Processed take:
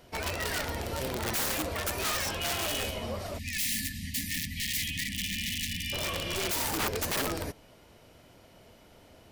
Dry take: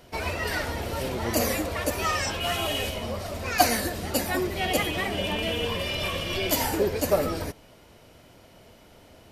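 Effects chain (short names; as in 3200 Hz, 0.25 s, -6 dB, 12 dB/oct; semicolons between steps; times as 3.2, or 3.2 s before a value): wrapped overs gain 21 dB; spectral delete 3.39–5.93, 290–1700 Hz; gain -3.5 dB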